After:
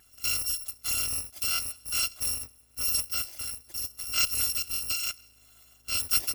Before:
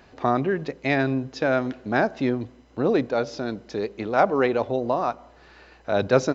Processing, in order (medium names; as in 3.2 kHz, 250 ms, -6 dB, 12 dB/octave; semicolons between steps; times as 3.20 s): bit-reversed sample order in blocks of 256 samples; trim -7 dB